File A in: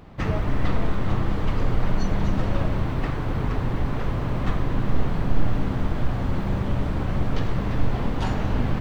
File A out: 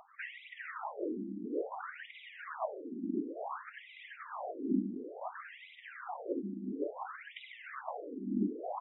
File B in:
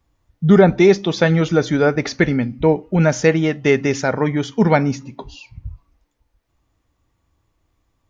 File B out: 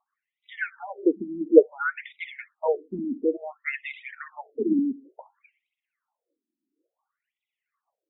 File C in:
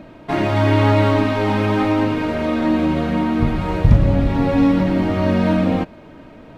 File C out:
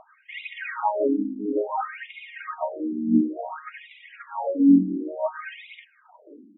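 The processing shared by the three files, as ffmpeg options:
ffmpeg -i in.wav -af "aemphasis=mode=reproduction:type=75kf,aphaser=in_gain=1:out_gain=1:delay=1.6:decay=0.66:speed=1.9:type=triangular,afftfilt=real='re*between(b*sr/1024,260*pow(2800/260,0.5+0.5*sin(2*PI*0.57*pts/sr))/1.41,260*pow(2800/260,0.5+0.5*sin(2*PI*0.57*pts/sr))*1.41)':imag='im*between(b*sr/1024,260*pow(2800/260,0.5+0.5*sin(2*PI*0.57*pts/sr))/1.41,260*pow(2800/260,0.5+0.5*sin(2*PI*0.57*pts/sr))*1.41)':win_size=1024:overlap=0.75,volume=-4dB" out.wav

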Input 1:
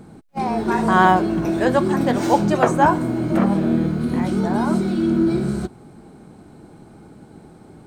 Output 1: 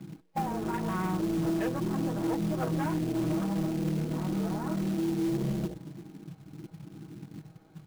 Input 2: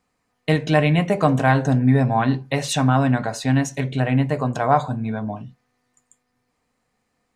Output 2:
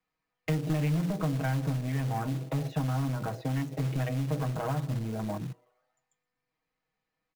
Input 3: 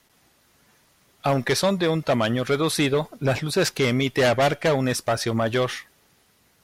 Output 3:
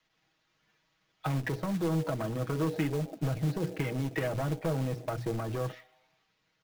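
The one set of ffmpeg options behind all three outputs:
ffmpeg -i in.wav -filter_complex "[0:a]highshelf=frequency=2300:gain=12,bandreject=frequency=60:width_type=h:width=6,bandreject=frequency=120:width_type=h:width=6,bandreject=frequency=180:width_type=h:width=6,bandreject=frequency=240:width_type=h:width=6,bandreject=frequency=300:width_type=h:width=6,bandreject=frequency=360:width_type=h:width=6,bandreject=frequency=420:width_type=h:width=6,bandreject=frequency=480:width_type=h:width=6,acrossover=split=110|350|1900[link_01][link_02][link_03][link_04];[link_01]acompressor=threshold=-32dB:ratio=4[link_05];[link_02]acompressor=threshold=-19dB:ratio=4[link_06];[link_03]acompressor=threshold=-30dB:ratio=4[link_07];[link_04]acompressor=threshold=-34dB:ratio=4[link_08];[link_05][link_06][link_07][link_08]amix=inputs=4:normalize=0,lowpass=3100,asplit=2[link_09][link_10];[link_10]asplit=5[link_11][link_12][link_13][link_14][link_15];[link_11]adelay=121,afreqshift=130,volume=-22dB[link_16];[link_12]adelay=242,afreqshift=260,volume=-26.4dB[link_17];[link_13]adelay=363,afreqshift=390,volume=-30.9dB[link_18];[link_14]adelay=484,afreqshift=520,volume=-35.3dB[link_19];[link_15]adelay=605,afreqshift=650,volume=-39.7dB[link_20];[link_16][link_17][link_18][link_19][link_20]amix=inputs=5:normalize=0[link_21];[link_09][link_21]amix=inputs=2:normalize=0,afwtdn=0.0316,acompressor=threshold=-27dB:ratio=8,aresample=16000,asoftclip=type=tanh:threshold=-26dB,aresample=44100,lowshelf=frequency=67:gain=3.5,aecho=1:1:6.3:0.68,acrusher=bits=4:mode=log:mix=0:aa=0.000001" out.wav

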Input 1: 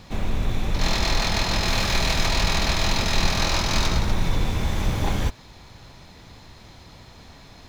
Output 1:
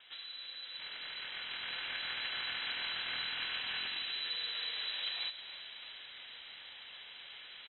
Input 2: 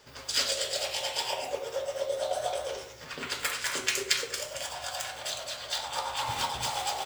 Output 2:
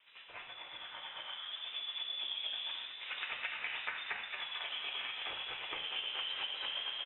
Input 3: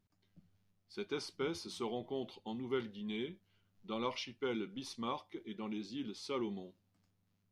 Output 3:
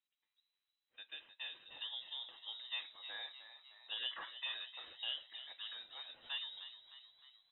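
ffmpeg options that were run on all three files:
ffmpeg -i in.wav -filter_complex "[0:a]acrossover=split=570 2900:gain=0.2 1 0.0891[link_01][link_02][link_03];[link_01][link_02][link_03]amix=inputs=3:normalize=0,acrossover=split=350|640|2700[link_04][link_05][link_06][link_07];[link_05]alimiter=level_in=14.5dB:limit=-24dB:level=0:latency=1,volume=-14.5dB[link_08];[link_04][link_08][link_06][link_07]amix=inputs=4:normalize=0,acompressor=threshold=-39dB:ratio=6,asplit=7[link_09][link_10][link_11][link_12][link_13][link_14][link_15];[link_10]adelay=307,afreqshift=-62,volume=-12dB[link_16];[link_11]adelay=614,afreqshift=-124,volume=-16.9dB[link_17];[link_12]adelay=921,afreqshift=-186,volume=-21.8dB[link_18];[link_13]adelay=1228,afreqshift=-248,volume=-26.6dB[link_19];[link_14]adelay=1535,afreqshift=-310,volume=-31.5dB[link_20];[link_15]adelay=1842,afreqshift=-372,volume=-36.4dB[link_21];[link_09][link_16][link_17][link_18][link_19][link_20][link_21]amix=inputs=7:normalize=0,dynaudnorm=framelen=290:gausssize=11:maxgain=8dB,lowpass=frequency=3400:width_type=q:width=0.5098,lowpass=frequency=3400:width_type=q:width=0.6013,lowpass=frequency=3400:width_type=q:width=0.9,lowpass=frequency=3400:width_type=q:width=2.563,afreqshift=-4000,volume=-5.5dB" out.wav

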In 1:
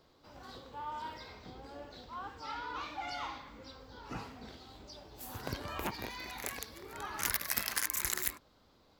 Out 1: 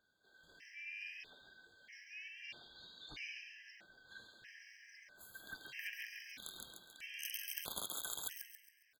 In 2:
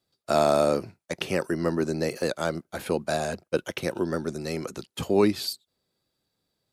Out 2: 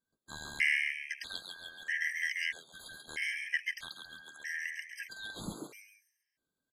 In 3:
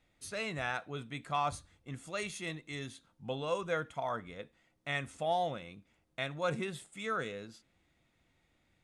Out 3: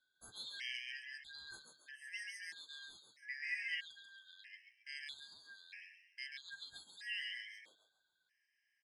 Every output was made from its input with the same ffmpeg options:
ffmpeg -i in.wav -filter_complex "[0:a]afftfilt=real='real(if(lt(b,272),68*(eq(floor(b/68),0)*3+eq(floor(b/68),1)*0+eq(floor(b/68),2)*1+eq(floor(b/68),3)*2)+mod(b,68),b),0)':imag='imag(if(lt(b,272),68*(eq(floor(b/68),0)*3+eq(floor(b/68),1)*0+eq(floor(b/68),2)*1+eq(floor(b/68),3)*2)+mod(b,68),b),0)':win_size=2048:overlap=0.75,asplit=6[link_01][link_02][link_03][link_04][link_05][link_06];[link_02]adelay=137,afreqshift=120,volume=-4dB[link_07];[link_03]adelay=274,afreqshift=240,volume=-12.2dB[link_08];[link_04]adelay=411,afreqshift=360,volume=-20.4dB[link_09];[link_05]adelay=548,afreqshift=480,volume=-28.5dB[link_10];[link_06]adelay=685,afreqshift=600,volume=-36.7dB[link_11];[link_01][link_07][link_08][link_09][link_10][link_11]amix=inputs=6:normalize=0,afftfilt=real='re*gt(sin(2*PI*0.78*pts/sr)*(1-2*mod(floor(b*sr/1024/1600),2)),0)':imag='im*gt(sin(2*PI*0.78*pts/sr)*(1-2*mod(floor(b*sr/1024/1600),2)),0)':win_size=1024:overlap=0.75,volume=-8dB" out.wav

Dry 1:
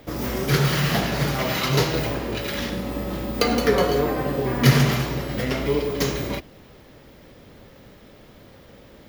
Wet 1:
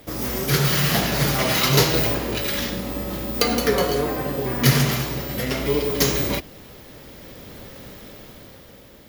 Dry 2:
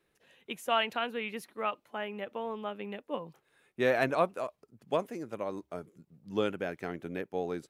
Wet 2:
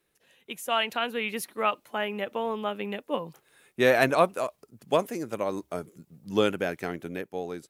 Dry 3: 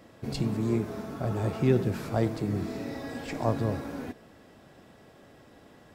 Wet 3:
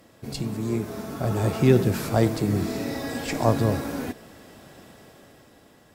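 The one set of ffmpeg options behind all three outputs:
ffmpeg -i in.wav -af "aemphasis=mode=production:type=cd,dynaudnorm=framelen=230:gausssize=9:maxgain=8dB,volume=-1dB" out.wav

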